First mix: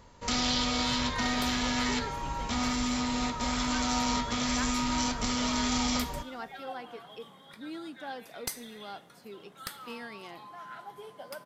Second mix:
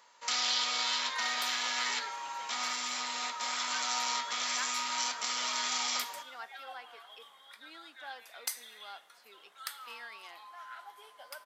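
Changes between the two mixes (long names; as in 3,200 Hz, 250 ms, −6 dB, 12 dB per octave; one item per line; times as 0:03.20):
speech: add high-frequency loss of the air 61 metres
master: add high-pass filter 1,000 Hz 12 dB per octave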